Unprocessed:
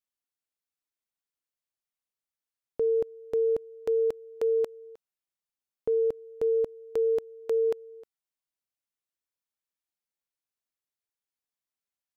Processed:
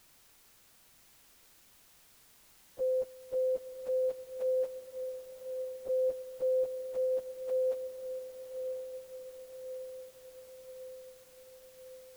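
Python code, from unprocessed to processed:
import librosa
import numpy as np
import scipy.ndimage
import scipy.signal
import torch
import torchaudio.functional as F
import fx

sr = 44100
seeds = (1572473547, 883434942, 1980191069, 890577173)

p1 = fx.partial_stretch(x, sr, pct=122)
p2 = fx.quant_dither(p1, sr, seeds[0], bits=8, dither='triangular')
p3 = p1 + (p2 * librosa.db_to_amplitude(-5.5))
p4 = fx.dmg_noise_colour(p3, sr, seeds[1], colour='pink', level_db=-65.0)
p5 = fx.echo_diffused(p4, sr, ms=1040, feedback_pct=61, wet_db=-8.5)
y = p5 * librosa.db_to_amplitude(-9.0)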